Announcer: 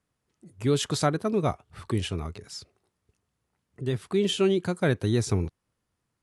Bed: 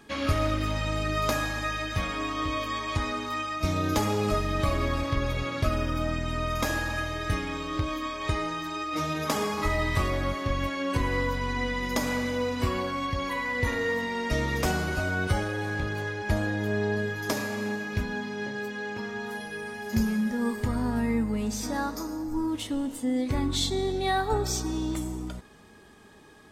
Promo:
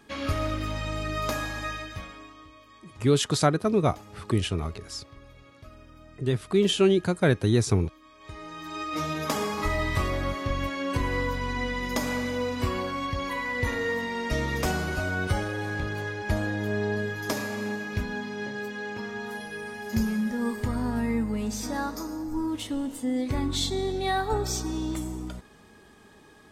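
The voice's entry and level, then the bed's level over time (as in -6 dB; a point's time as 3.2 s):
2.40 s, +2.5 dB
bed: 1.71 s -2.5 dB
2.53 s -22 dB
8.04 s -22 dB
8.81 s -0.5 dB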